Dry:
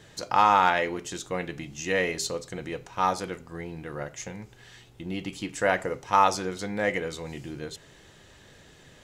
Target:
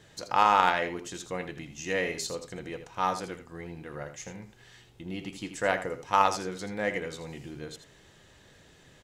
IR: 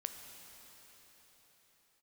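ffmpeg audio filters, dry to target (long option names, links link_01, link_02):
-af "aecho=1:1:81:0.299,aeval=exprs='0.531*(cos(1*acos(clip(val(0)/0.531,-1,1)))-cos(1*PI/2))+0.0668*(cos(3*acos(clip(val(0)/0.531,-1,1)))-cos(3*PI/2))':channel_layout=same"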